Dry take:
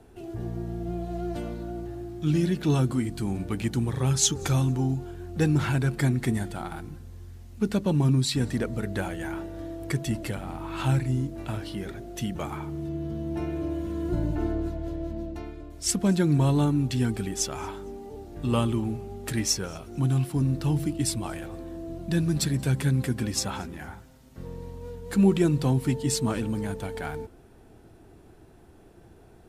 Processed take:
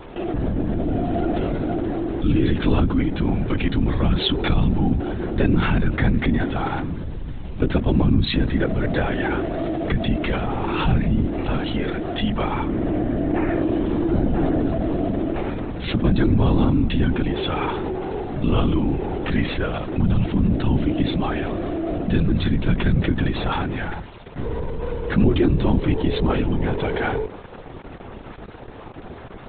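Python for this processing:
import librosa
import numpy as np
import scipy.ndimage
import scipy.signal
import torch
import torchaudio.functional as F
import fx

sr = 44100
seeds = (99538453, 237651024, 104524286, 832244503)

y = fx.lowpass_res(x, sr, hz=1900.0, q=2.3, at=(12.71, 13.62))
y = np.sign(y) * np.maximum(np.abs(y) - 10.0 ** (-50.0 / 20.0), 0.0)
y = fx.lpc_vocoder(y, sr, seeds[0], excitation='whisper', order=16)
y = fx.env_flatten(y, sr, amount_pct=50)
y = y * 10.0 ** (2.5 / 20.0)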